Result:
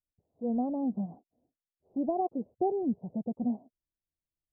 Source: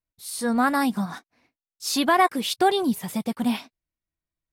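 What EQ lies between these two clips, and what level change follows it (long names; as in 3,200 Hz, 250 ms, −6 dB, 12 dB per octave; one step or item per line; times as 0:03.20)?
Butterworth low-pass 720 Hz 48 dB per octave
−6.5 dB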